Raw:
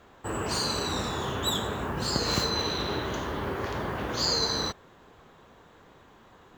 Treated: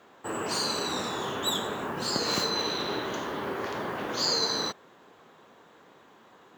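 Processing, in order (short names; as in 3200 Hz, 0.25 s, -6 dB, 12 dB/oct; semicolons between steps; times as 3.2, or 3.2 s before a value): HPF 200 Hz 12 dB/oct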